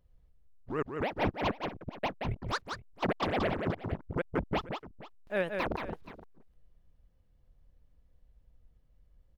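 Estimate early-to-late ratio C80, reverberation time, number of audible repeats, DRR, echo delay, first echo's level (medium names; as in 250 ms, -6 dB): no reverb, no reverb, 2, no reverb, 177 ms, -5.5 dB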